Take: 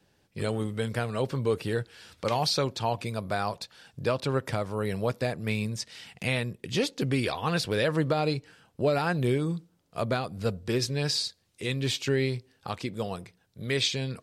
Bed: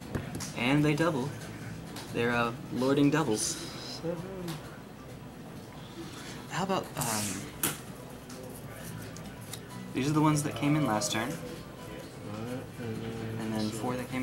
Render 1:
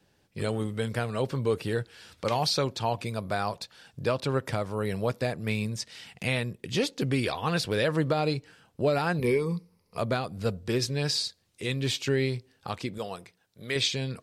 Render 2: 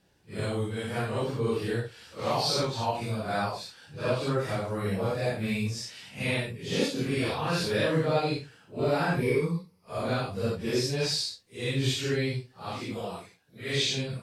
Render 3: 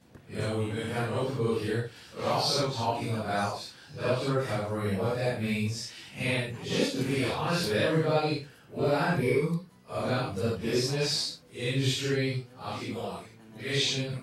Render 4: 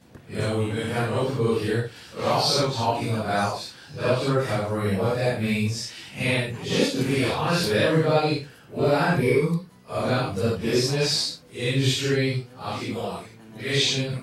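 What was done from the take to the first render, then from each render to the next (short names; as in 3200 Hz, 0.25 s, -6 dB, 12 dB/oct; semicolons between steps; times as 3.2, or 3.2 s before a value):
9.19–9.98 ripple EQ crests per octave 0.87, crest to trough 14 dB; 12.98–13.76 low shelf 250 Hz -11 dB
phase scrambler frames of 0.2 s
add bed -17.5 dB
gain +5.5 dB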